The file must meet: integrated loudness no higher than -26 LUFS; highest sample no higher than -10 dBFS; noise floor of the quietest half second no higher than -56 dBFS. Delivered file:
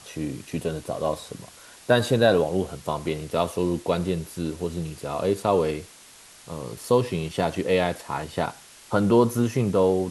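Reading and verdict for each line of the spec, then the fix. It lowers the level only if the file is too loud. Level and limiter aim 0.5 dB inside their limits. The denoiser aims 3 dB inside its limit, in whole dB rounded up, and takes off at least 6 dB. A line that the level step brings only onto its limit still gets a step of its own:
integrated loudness -25.0 LUFS: fail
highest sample -5.5 dBFS: fail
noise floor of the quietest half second -49 dBFS: fail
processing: noise reduction 9 dB, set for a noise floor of -49 dBFS; trim -1.5 dB; peak limiter -10.5 dBFS

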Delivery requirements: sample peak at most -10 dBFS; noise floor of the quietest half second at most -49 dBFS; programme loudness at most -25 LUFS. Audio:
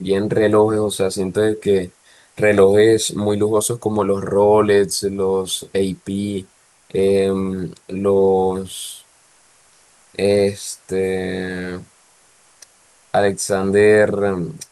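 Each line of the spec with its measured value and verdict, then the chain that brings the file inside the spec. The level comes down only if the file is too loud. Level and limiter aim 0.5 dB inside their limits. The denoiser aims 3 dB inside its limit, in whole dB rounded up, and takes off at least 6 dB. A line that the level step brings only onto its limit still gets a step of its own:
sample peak -2.5 dBFS: fail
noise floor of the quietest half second -54 dBFS: pass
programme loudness -17.5 LUFS: fail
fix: trim -8 dB

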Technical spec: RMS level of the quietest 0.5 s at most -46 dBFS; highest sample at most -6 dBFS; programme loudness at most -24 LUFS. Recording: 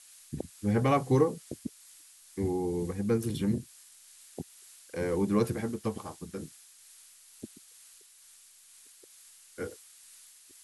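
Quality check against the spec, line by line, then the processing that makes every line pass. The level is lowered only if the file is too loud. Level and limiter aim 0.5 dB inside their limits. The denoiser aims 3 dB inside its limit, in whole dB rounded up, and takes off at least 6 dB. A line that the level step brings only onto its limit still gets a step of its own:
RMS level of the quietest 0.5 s -57 dBFS: pass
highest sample -13.0 dBFS: pass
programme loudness -31.5 LUFS: pass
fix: none needed

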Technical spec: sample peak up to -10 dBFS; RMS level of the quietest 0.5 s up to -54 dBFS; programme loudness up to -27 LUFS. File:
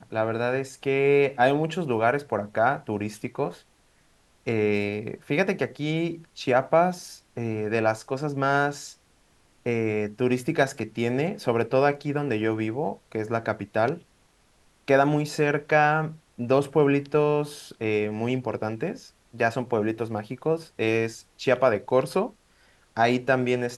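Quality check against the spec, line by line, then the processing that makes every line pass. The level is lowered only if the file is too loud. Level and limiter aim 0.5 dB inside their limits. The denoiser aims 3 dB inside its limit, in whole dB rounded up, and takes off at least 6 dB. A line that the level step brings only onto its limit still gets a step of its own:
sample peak -6.5 dBFS: fail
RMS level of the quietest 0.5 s -62 dBFS: pass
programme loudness -25.5 LUFS: fail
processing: trim -2 dB; peak limiter -10.5 dBFS

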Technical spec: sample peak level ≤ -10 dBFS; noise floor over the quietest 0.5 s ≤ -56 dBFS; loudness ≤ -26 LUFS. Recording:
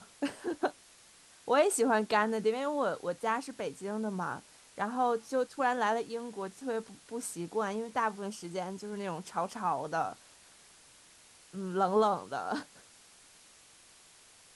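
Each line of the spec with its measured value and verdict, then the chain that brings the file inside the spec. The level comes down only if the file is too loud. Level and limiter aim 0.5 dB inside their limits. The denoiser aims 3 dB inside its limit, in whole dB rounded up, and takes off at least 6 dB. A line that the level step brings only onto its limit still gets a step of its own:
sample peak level -15.0 dBFS: pass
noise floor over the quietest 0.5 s -59 dBFS: pass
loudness -33.0 LUFS: pass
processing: none needed

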